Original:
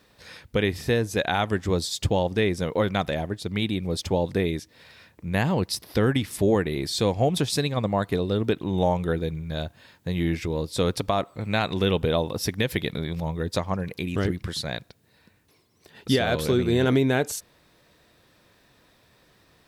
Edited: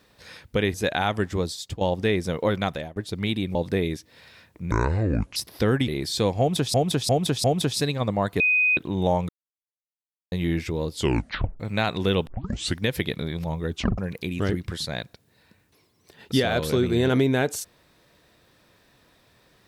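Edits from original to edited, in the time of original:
0.74–1.07 cut
1.59–2.14 fade out, to -12.5 dB
2.85–3.29 fade out equal-power, to -23 dB
3.88–4.18 cut
5.34–5.71 speed 57%
6.23–6.69 cut
7.2–7.55 loop, 4 plays
8.16–8.53 bleep 2500 Hz -17 dBFS
9.05–10.08 mute
10.69 tape stop 0.67 s
12.03 tape start 0.53 s
13.46 tape stop 0.28 s

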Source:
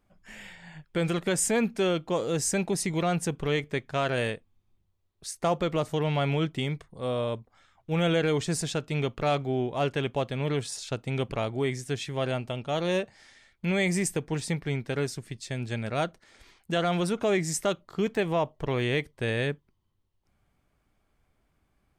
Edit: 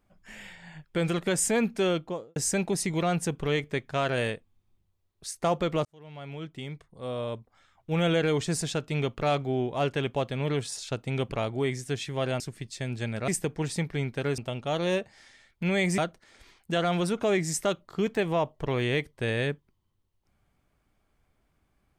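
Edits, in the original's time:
1.93–2.36 studio fade out
5.85–7.91 fade in
12.4–14 swap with 15.1–15.98

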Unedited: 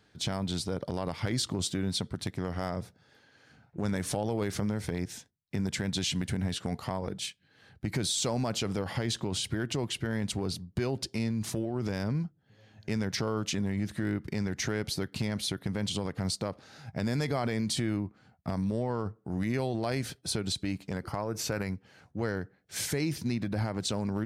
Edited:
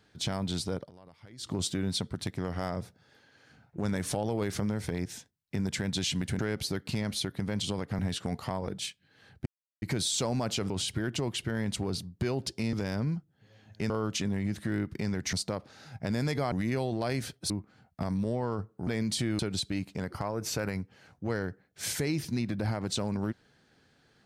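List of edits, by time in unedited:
0.75–1.53 dip -20.5 dB, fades 0.15 s
7.86 insert silence 0.36 s
8.74–9.26 cut
11.29–11.81 cut
12.98–13.23 cut
14.66–16.26 move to 6.39
17.45–17.97 swap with 19.34–20.32

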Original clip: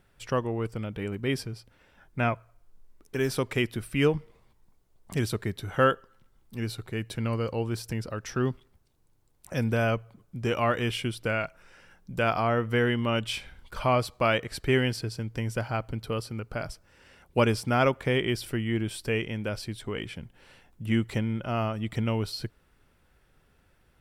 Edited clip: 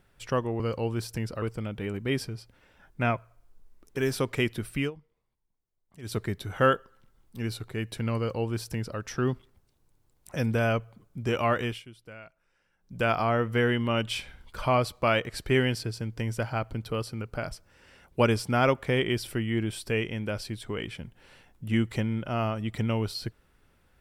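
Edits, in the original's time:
3.95–5.34 dip -19 dB, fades 0.14 s
7.35–8.17 copy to 0.6
10.78–12.19 dip -17.5 dB, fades 0.23 s

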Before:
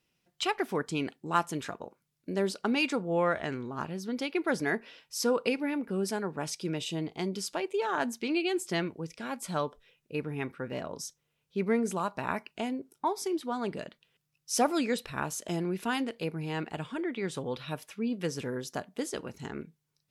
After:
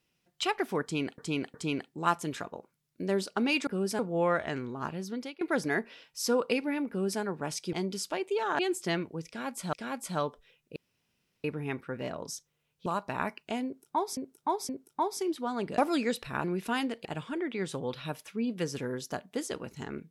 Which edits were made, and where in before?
0.82–1.18 loop, 3 plays
4.03–4.37 fade out linear, to -20.5 dB
5.85–6.17 copy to 2.95
6.69–7.16 cut
8.02–8.44 cut
9.12–9.58 loop, 2 plays
10.15 insert room tone 0.68 s
11.57–11.95 cut
12.74–13.26 loop, 3 plays
13.83–14.61 cut
15.27–15.61 cut
16.22–16.68 cut

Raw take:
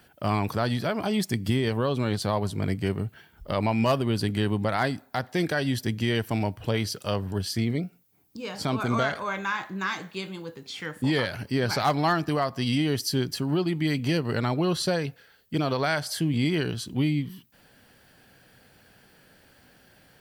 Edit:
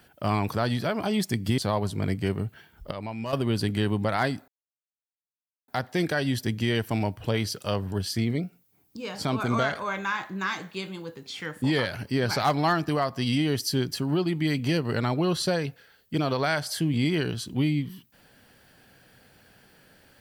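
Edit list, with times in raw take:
1.58–2.18 cut
3.51–3.93 gain -10 dB
5.08 insert silence 1.20 s

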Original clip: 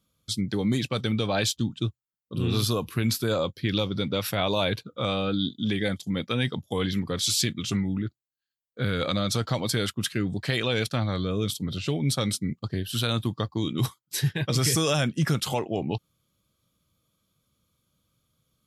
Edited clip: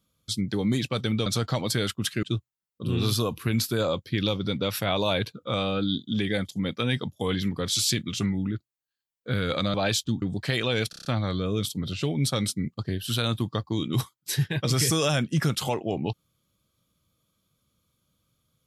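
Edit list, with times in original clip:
1.26–1.74 swap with 9.25–10.22
10.9 stutter 0.03 s, 6 plays

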